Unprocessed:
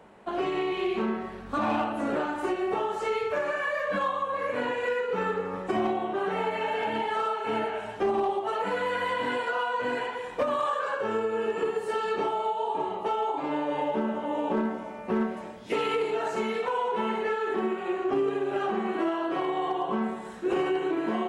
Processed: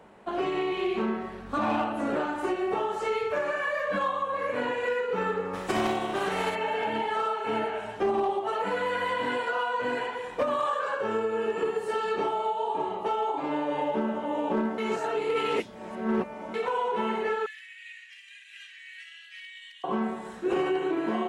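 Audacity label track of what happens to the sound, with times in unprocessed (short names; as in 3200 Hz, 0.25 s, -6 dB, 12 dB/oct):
5.530000	6.540000	spectral contrast lowered exponent 0.67
14.780000	16.540000	reverse
17.460000	19.840000	Chebyshev high-pass 1800 Hz, order 6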